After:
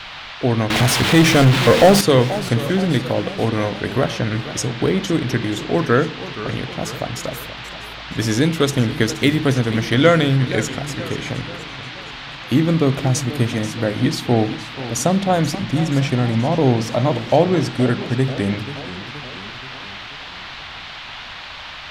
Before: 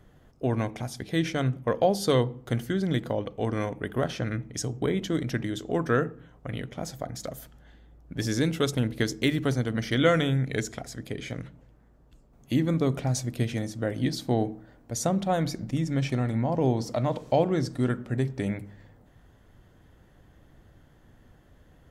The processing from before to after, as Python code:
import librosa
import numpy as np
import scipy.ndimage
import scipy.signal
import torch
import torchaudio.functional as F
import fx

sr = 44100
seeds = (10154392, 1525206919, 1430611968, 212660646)

y = fx.dmg_noise_band(x, sr, seeds[0], low_hz=660.0, high_hz=3900.0, level_db=-43.0)
y = fx.power_curve(y, sr, exponent=0.5, at=(0.7, 2.01))
y = fx.echo_warbled(y, sr, ms=479, feedback_pct=55, rate_hz=2.8, cents=186, wet_db=-14)
y = y * 10.0 ** (8.5 / 20.0)